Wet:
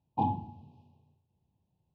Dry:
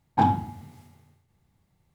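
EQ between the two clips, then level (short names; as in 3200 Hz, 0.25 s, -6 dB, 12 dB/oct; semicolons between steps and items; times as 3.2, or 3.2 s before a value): HPF 56 Hz; brick-wall FIR band-stop 1100–2400 Hz; air absorption 290 m; -7.5 dB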